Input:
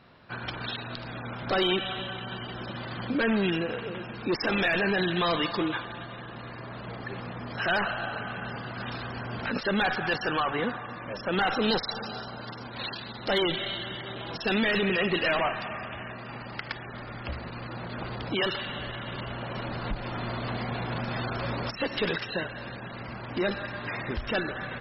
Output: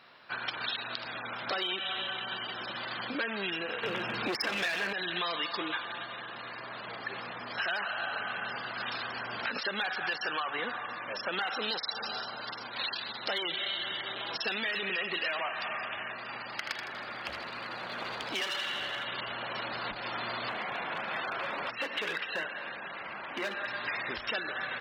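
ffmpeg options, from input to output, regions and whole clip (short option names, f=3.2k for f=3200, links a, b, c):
-filter_complex "[0:a]asettb=1/sr,asplit=3[a][b][c];[a]atrim=end=3.834[d];[b]atrim=start=3.83:end=4.93,asetpts=PTS-STARTPTS,afade=t=in:d=0.004:c=qsin,afade=t=out:st=1.096:d=0.004:c=qsin,lowshelf=f=230:g=9,acontrast=86,aeval=exprs='clip(val(0),-1,0.0944)':c=same[e];[c]atrim=start=4.926[f];[d][e]acrossfade=d=0.004:c1=hsin:c2=qsin[g];[g][f]acrossfade=d=0.004:c1=qsin:c2=hsin,asettb=1/sr,asplit=3[h][i][j];[h]atrim=end=16.514[k];[i]atrim=start=16.51:end=19.05,asetpts=PTS-STARTPTS,afade=t=in:d=0.004:c=qsin,afade=t=out:st=2.536:d=0.004:c=qsin,aeval=exprs='clip(val(0),-1,0.0251)':c=same,aecho=1:1:80|160|240|320|400|480:0.398|0.199|0.0995|0.0498|0.0249|0.0124,atrim=end_sample=112014[l];[j]atrim=start=19.046[m];[k][l]acrossfade=d=0.004:c1=hsin:c2=qsin[n];[n][m]acrossfade=d=0.004:c1=qsin:c2=hsin,asettb=1/sr,asplit=3[o][p][q];[o]atrim=end=20.494[r];[p]atrim=start=20.49:end=23.66,asetpts=PTS-STARTPTS,afade=t=in:d=0.004:c=qsin,afade=t=out:st=3.166:d=0.004:c=qsin,lowpass=f=3.2k:w=0.5412,lowpass=f=3.2k:w=1.3066,bandreject=f=60:t=h:w=6,bandreject=f=120:t=h:w=6,bandreject=f=180:t=h:w=6,bandreject=f=240:t=h:w=6,bandreject=f=300:t=h:w=6,bandreject=f=360:t=h:w=6,bandreject=f=420:t=h:w=6,bandreject=f=480:t=h:w=6,asoftclip=type=hard:threshold=-25dB[s];[q]atrim=start=23.656[t];[r][s]acrossfade=d=0.004:c1=hsin:c2=qsin[u];[u][t]acrossfade=d=0.004:c1=qsin:c2=hsin,highpass=f=440:p=1,tiltshelf=f=720:g=-4.5,acompressor=threshold=-30dB:ratio=6"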